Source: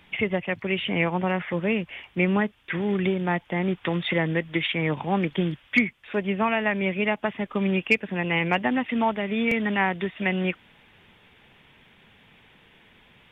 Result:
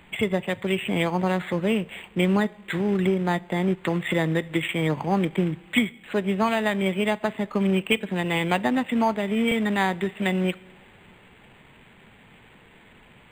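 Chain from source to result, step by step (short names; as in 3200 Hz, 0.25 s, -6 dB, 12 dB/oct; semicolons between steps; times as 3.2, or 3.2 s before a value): in parallel at -1.5 dB: compressor 5:1, threshold -35 dBFS, peak gain reduction 18 dB; on the sum: companded quantiser 6-bit; two-slope reverb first 0.47 s, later 3 s, from -16 dB, DRR 17.5 dB; decimation joined by straight lines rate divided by 8×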